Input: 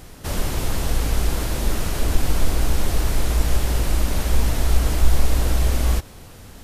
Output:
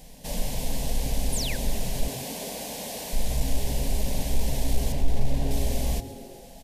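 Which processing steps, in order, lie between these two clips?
0:01.32–0:01.57: sound drawn into the spectrogram fall 1,400–11,000 Hz −28 dBFS
0:02.07–0:03.13: high-pass filter 250 Hz 12 dB per octave
0:04.92–0:05.51: high-shelf EQ 4,600 Hz −11.5 dB
soft clipping −5.5 dBFS, distortion −22 dB
phaser with its sweep stopped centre 350 Hz, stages 6
echo with shifted repeats 133 ms, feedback 65%, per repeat −140 Hz, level −18 dB
level −3 dB

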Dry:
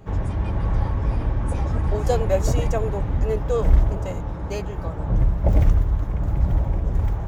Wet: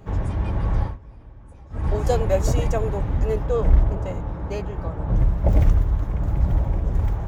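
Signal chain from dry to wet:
0:00.81–0:01.87: duck −21 dB, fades 0.17 s
0:03.46–0:05.09: high-shelf EQ 4,300 Hz −9.5 dB

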